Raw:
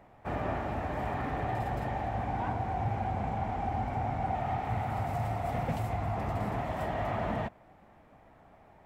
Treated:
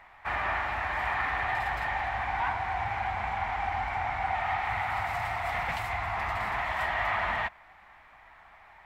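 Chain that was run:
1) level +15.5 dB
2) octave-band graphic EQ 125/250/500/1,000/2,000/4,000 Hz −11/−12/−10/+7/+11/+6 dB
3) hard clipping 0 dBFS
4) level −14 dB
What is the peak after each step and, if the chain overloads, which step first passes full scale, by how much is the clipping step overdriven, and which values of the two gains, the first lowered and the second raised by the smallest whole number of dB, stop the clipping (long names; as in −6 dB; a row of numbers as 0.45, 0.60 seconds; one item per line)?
−4.5, −3.0, −3.0, −17.0 dBFS
no step passes full scale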